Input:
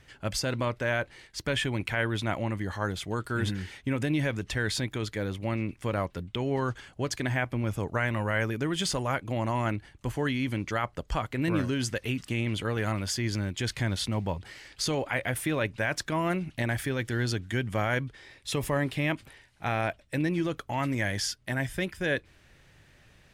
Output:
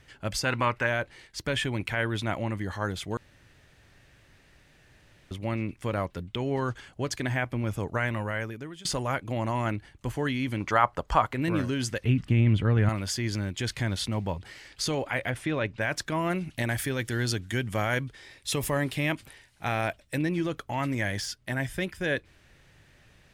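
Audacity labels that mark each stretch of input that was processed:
0.450000	0.870000	gain on a spectral selection 750–3,000 Hz +8 dB
3.170000	5.310000	fill with room tone
8.050000	8.850000	fade out linear, to −20.5 dB
10.600000	11.340000	parametric band 980 Hz +11.5 dB 1.5 octaves
12.040000	12.890000	bass and treble bass +11 dB, treble −13 dB
15.300000	15.810000	high-frequency loss of the air 77 metres
16.350000	20.180000	high-shelf EQ 4,800 Hz +7 dB
21.070000	21.560000	de-essing amount 65%

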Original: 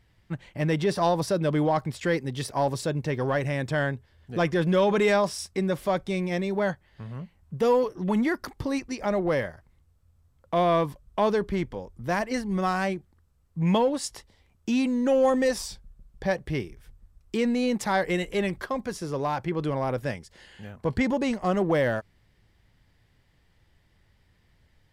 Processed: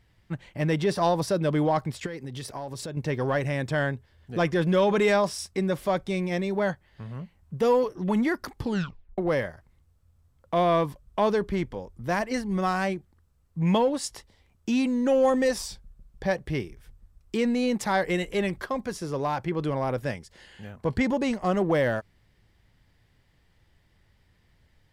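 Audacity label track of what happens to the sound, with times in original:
2.060000	2.970000	downward compressor 8 to 1, threshold −32 dBFS
8.600000	8.600000	tape stop 0.58 s

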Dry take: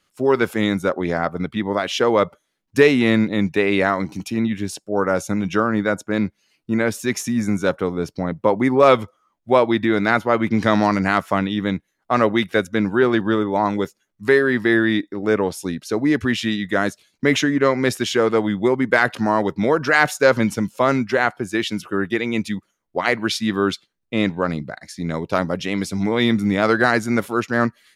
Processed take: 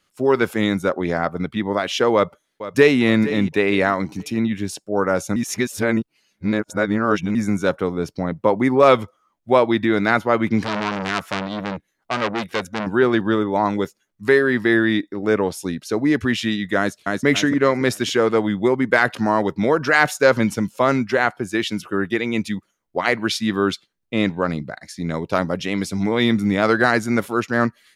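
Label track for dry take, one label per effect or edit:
2.140000	3.020000	delay throw 460 ms, feedback 30%, level −13.5 dB
5.360000	7.350000	reverse
10.620000	12.870000	saturating transformer saturates under 2,700 Hz
16.780000	17.250000	delay throw 280 ms, feedback 35%, level −2 dB

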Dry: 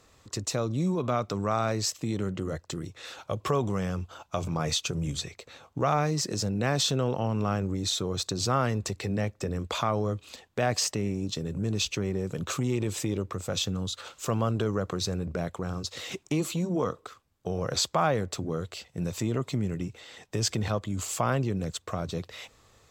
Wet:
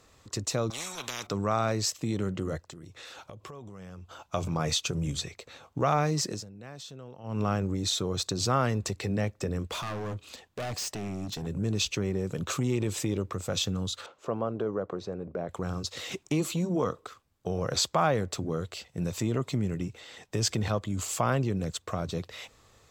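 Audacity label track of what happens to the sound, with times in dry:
0.700000	1.270000	every bin compressed towards the loudest bin 10 to 1
2.630000	4.340000	downward compressor 10 to 1, threshold −41 dBFS
6.270000	7.410000	duck −18 dB, fades 0.18 s
9.670000	11.470000	gain into a clipping stage and back gain 32 dB
14.060000	15.490000	resonant band-pass 520 Hz, Q 0.78

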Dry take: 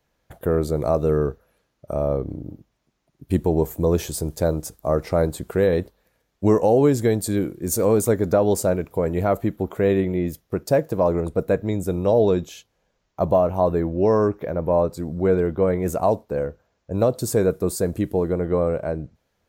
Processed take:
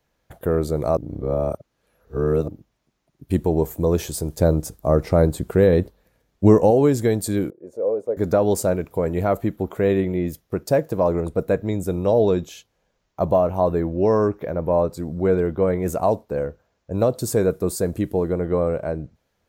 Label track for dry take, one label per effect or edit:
0.970000	2.480000	reverse
4.380000	6.710000	low-shelf EQ 420 Hz +6.5 dB
7.500000	8.170000	resonant band-pass 530 Hz, Q 3.9

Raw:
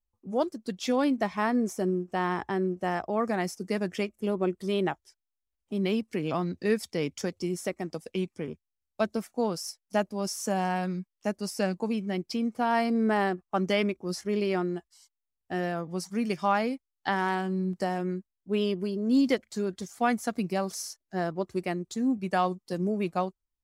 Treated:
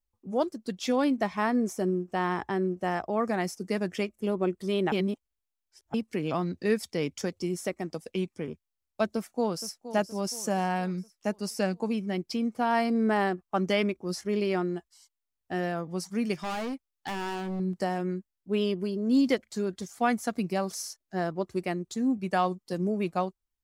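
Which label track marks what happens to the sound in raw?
4.920000	5.940000	reverse
9.070000	9.830000	delay throw 470 ms, feedback 50%, level −13 dB
16.340000	17.600000	hard clipping −30.5 dBFS

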